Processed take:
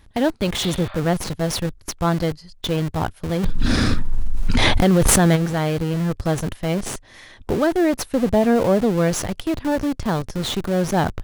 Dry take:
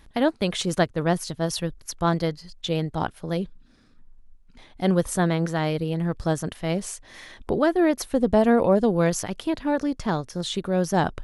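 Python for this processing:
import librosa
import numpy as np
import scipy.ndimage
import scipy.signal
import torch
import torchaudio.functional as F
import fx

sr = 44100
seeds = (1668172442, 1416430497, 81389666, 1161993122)

p1 = fx.spec_repair(x, sr, seeds[0], start_s=0.63, length_s=0.33, low_hz=550.0, high_hz=5200.0, source='both')
p2 = fx.peak_eq(p1, sr, hz=92.0, db=8.5, octaves=0.65)
p3 = fx.schmitt(p2, sr, flips_db=-30.5)
p4 = p2 + (p3 * librosa.db_to_amplitude(-5.5))
y = fx.env_flatten(p4, sr, amount_pct=100, at=(3.43, 5.35), fade=0.02)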